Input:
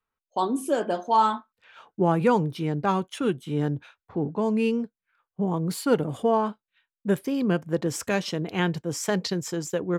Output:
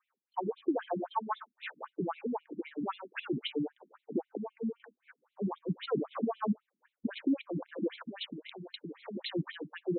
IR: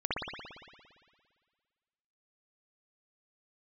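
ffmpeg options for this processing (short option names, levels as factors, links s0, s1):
-filter_complex "[0:a]asettb=1/sr,asplit=3[s0][s1][s2];[s0]atrim=end=4.374[s3];[s1]atrim=start=4.37:end=4.8,asetpts=PTS-STARTPTS,afade=t=in:d=0.004:c=qsin,afade=t=out:st=0.426:d=0.004:c=qsin,agate=range=0.0316:threshold=0.126:ratio=16:detection=peak[s4];[s2]atrim=start=4.796[s5];[s3][s4]acrossfade=d=0.004:c1=hsin:c2=qsin[s6];[s6][s5]acrossfade=d=0.004:c1=qsin:c2=hsin,dynaudnorm=f=270:g=7:m=5.62,alimiter=level_in=1.68:limit=0.0631:level=0:latency=1:release=42,volume=0.596,asettb=1/sr,asplit=3[s7][s8][s9];[s7]atrim=end=7.934[s10];[s8]atrim=start=7.93:end=9.17,asetpts=PTS-STARTPTS,afade=t=in:d=0.004:c=qsin,afade=t=out:st=1.236:d=0.004:c=qsin,acrossover=split=270|3000[s11][s12][s13];[s11]acompressor=threshold=0.00355:ratio=4[s14];[s12]acompressor=threshold=0.00355:ratio=4[s15];[s13]acompressor=threshold=0.00794:ratio=4[s16];[s14][s15][s16]amix=inputs=3:normalize=0[s17];[s9]atrim=start=9.166[s18];[s10][s17]acrossfade=d=0.004:c1=hsin:c2=qsin[s19];[s19][s18]acrossfade=d=0.004:c1=qsin:c2=hsin,afftfilt=real='re*between(b*sr/1024,230*pow(3000/230,0.5+0.5*sin(2*PI*3.8*pts/sr))/1.41,230*pow(3000/230,0.5+0.5*sin(2*PI*3.8*pts/sr))*1.41)':imag='im*between(b*sr/1024,230*pow(3000/230,0.5+0.5*sin(2*PI*3.8*pts/sr))/1.41,230*pow(3000/230,0.5+0.5*sin(2*PI*3.8*pts/sr))*1.41)':win_size=1024:overlap=0.75,volume=2.82"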